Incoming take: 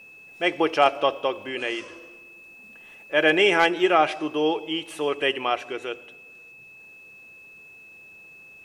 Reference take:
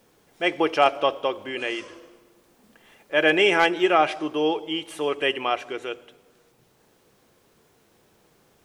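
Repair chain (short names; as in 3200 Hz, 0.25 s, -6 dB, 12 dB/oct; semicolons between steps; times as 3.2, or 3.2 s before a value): notch 2600 Hz, Q 30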